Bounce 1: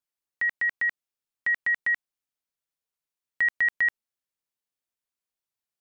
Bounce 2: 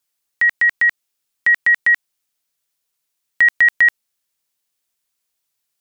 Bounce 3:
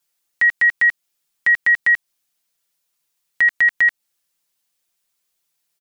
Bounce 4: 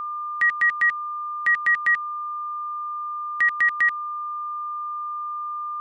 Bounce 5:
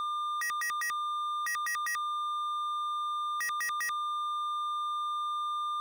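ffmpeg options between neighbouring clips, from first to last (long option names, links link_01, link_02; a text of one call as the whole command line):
ffmpeg -i in.wav -af "highshelf=frequency=2400:gain=8,volume=8dB" out.wav
ffmpeg -i in.wav -af "aecho=1:1:5.8:0.82,alimiter=limit=-9.5dB:level=0:latency=1:release=157" out.wav
ffmpeg -i in.wav -af "aeval=exprs='val(0)+0.0794*sin(2*PI*1200*n/s)':channel_layout=same,volume=-5dB" out.wav
ffmpeg -i in.wav -af "volume=32dB,asoftclip=hard,volume=-32dB" out.wav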